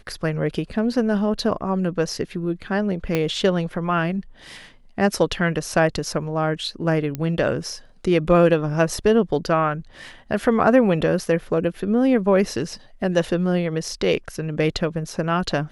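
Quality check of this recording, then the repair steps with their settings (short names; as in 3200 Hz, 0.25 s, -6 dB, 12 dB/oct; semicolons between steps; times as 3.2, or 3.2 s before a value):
3.15 pop -8 dBFS
7.15 pop -13 dBFS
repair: de-click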